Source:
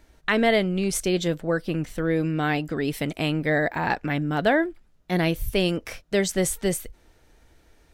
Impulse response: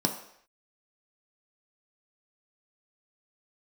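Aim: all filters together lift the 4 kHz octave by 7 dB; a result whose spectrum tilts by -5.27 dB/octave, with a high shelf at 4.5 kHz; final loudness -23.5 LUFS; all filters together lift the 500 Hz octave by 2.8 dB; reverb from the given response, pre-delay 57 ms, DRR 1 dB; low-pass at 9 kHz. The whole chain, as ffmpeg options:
-filter_complex "[0:a]lowpass=9000,equalizer=f=500:t=o:g=3.5,equalizer=f=4000:t=o:g=6.5,highshelf=f=4500:g=6,asplit=2[s0][s1];[1:a]atrim=start_sample=2205,adelay=57[s2];[s1][s2]afir=irnorm=-1:irlink=0,volume=0.335[s3];[s0][s3]amix=inputs=2:normalize=0,volume=0.447"

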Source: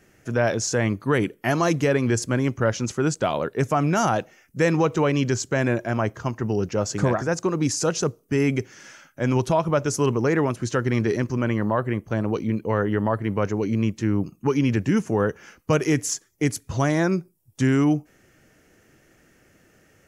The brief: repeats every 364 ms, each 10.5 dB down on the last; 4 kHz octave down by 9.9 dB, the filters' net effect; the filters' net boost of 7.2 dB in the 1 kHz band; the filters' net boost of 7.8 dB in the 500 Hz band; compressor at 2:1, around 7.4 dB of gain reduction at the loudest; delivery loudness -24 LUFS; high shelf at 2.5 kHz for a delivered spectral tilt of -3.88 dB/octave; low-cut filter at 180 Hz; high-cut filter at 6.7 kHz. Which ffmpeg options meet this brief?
-af "highpass=180,lowpass=6700,equalizer=f=500:t=o:g=8,equalizer=f=1000:t=o:g=8,highshelf=f=2500:g=-7,equalizer=f=4000:t=o:g=-7.5,acompressor=threshold=0.0708:ratio=2,aecho=1:1:364|728|1092:0.299|0.0896|0.0269,volume=1.06"

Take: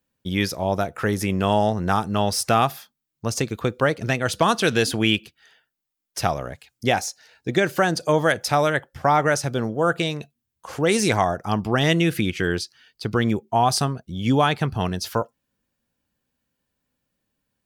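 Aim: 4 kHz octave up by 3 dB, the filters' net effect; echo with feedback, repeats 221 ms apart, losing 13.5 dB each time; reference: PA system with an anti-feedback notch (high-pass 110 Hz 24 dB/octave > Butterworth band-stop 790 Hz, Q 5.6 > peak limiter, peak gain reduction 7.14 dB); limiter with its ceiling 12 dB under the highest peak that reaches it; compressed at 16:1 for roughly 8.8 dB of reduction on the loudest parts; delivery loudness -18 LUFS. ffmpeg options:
-af "equalizer=f=4000:t=o:g=4,acompressor=threshold=0.0794:ratio=16,alimiter=limit=0.0794:level=0:latency=1,highpass=f=110:w=0.5412,highpass=f=110:w=1.3066,asuperstop=centerf=790:order=8:qfactor=5.6,aecho=1:1:221|442:0.211|0.0444,volume=8.41,alimiter=limit=0.422:level=0:latency=1"

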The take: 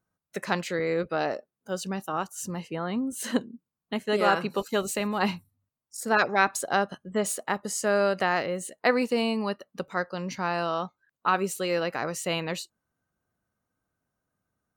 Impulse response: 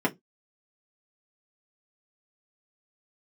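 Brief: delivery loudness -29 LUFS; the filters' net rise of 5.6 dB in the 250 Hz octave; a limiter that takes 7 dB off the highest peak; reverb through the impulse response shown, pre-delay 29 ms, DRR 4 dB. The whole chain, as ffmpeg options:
-filter_complex "[0:a]equalizer=f=250:t=o:g=7,alimiter=limit=0.2:level=0:latency=1,asplit=2[s0][s1];[1:a]atrim=start_sample=2205,adelay=29[s2];[s1][s2]afir=irnorm=-1:irlink=0,volume=0.168[s3];[s0][s3]amix=inputs=2:normalize=0,volume=0.531"

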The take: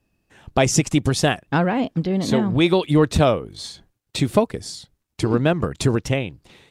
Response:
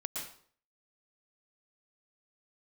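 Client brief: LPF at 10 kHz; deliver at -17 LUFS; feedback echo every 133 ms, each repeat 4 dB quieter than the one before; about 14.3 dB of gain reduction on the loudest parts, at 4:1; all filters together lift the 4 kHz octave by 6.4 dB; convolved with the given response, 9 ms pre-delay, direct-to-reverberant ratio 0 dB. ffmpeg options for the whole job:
-filter_complex "[0:a]lowpass=10000,equalizer=f=4000:t=o:g=8,acompressor=threshold=0.0355:ratio=4,aecho=1:1:133|266|399|532|665|798|931|1064|1197:0.631|0.398|0.25|0.158|0.0994|0.0626|0.0394|0.0249|0.0157,asplit=2[s0][s1];[1:a]atrim=start_sample=2205,adelay=9[s2];[s1][s2]afir=irnorm=-1:irlink=0,volume=0.841[s3];[s0][s3]amix=inputs=2:normalize=0,volume=3.16"

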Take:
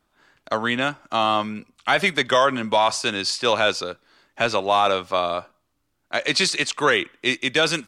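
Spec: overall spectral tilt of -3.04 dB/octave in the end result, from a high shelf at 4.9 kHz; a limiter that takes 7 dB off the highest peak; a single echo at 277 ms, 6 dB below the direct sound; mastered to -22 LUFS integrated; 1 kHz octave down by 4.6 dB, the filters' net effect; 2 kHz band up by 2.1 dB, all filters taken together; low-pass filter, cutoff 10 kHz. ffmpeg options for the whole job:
-af "lowpass=10000,equalizer=f=1000:t=o:g=-7.5,equalizer=f=2000:t=o:g=6,highshelf=f=4900:g=-6.5,alimiter=limit=0.237:level=0:latency=1,aecho=1:1:277:0.501,volume=1.33"

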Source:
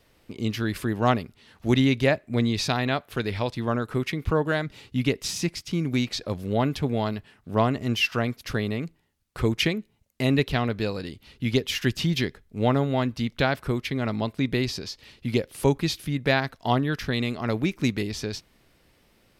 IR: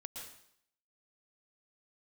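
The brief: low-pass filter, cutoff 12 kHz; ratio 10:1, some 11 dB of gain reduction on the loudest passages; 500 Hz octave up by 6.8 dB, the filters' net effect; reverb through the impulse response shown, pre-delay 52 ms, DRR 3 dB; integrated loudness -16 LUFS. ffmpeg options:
-filter_complex "[0:a]lowpass=12000,equalizer=f=500:t=o:g=8.5,acompressor=threshold=0.0708:ratio=10,asplit=2[s0][s1];[1:a]atrim=start_sample=2205,adelay=52[s2];[s1][s2]afir=irnorm=-1:irlink=0,volume=1[s3];[s0][s3]amix=inputs=2:normalize=0,volume=3.98"

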